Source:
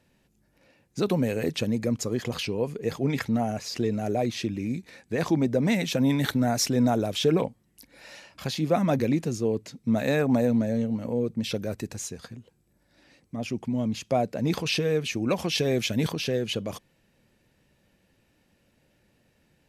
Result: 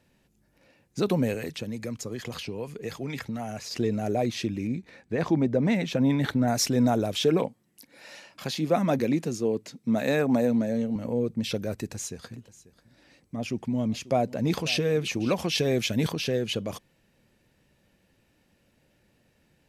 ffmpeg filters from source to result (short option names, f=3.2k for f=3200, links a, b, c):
-filter_complex "[0:a]asettb=1/sr,asplit=3[a][b][c];[a]atrim=end=1.344[d];[b]atrim=start=1.34:end=3.71,asetpts=PTS-STARTPTS,afade=t=in:d=0.004:c=qsin,afade=t=out:st=2.366:d=0.004:c=qsin,acrossover=split=93|1100[e][f][g];[e]acompressor=threshold=-48dB:ratio=4[h];[f]acompressor=threshold=-33dB:ratio=4[i];[g]acompressor=threshold=-37dB:ratio=4[j];[h][i][j]amix=inputs=3:normalize=0[k];[c]atrim=start=3.706[l];[d][k]acrossfade=d=0.004:c1=hsin:c2=qsin[m];[m][l]acrossfade=d=0.004:c1=qsin:c2=hsin,asettb=1/sr,asplit=3[n][o][p];[n]atrim=end=4.674[q];[o]atrim=start=4.67:end=6.48,asetpts=PTS-STARTPTS,afade=t=in:d=0.004:c=qsin,afade=t=out:st=1.806:d=0.004:c=qsin,lowpass=f=2.5k:p=1[r];[p]atrim=start=6.476[s];[q][r]acrossfade=d=0.004:c1=hsin:c2=qsin[t];[t][s]acrossfade=d=0.004:c1=qsin:c2=hsin,asettb=1/sr,asplit=3[u][v][w];[u]atrim=end=7.204[x];[v]atrim=start=7.2:end=10.96,asetpts=PTS-STARTPTS,afade=t=in:d=0.004:c=qsin,afade=t=out:st=3.756:d=0.004:c=qsin,highpass=150[y];[w]atrim=start=10.956[z];[x][y]acrossfade=d=0.004:c1=hsin:c2=qsin[aa];[aa][z]acrossfade=d=0.004:c1=qsin:c2=hsin,asettb=1/sr,asplit=3[ab][ac][ad];[ab]atrim=end=11.724[ae];[ac]atrim=start=11.72:end=15.31,asetpts=PTS-STARTPTS,afade=t=in:d=0.004:c=qsin,afade=t=out:st=3.586:d=0.004:c=qsin,aecho=1:1:540:0.119,atrim=end_sample=158319[af];[ad]atrim=start=15.306[ag];[ae][af]acrossfade=d=0.004:c1=hsin:c2=qsin[ah];[ah][ag]acrossfade=d=0.004:c1=qsin:c2=hsin"